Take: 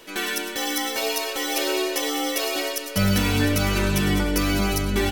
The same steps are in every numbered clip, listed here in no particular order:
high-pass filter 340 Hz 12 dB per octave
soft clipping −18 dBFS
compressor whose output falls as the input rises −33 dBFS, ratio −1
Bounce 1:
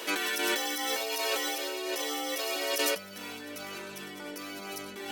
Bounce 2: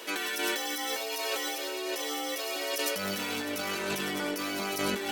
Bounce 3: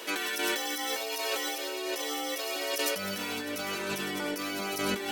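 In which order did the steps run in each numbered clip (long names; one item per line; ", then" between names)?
compressor whose output falls as the input rises, then soft clipping, then high-pass filter
soft clipping, then high-pass filter, then compressor whose output falls as the input rises
high-pass filter, then compressor whose output falls as the input rises, then soft clipping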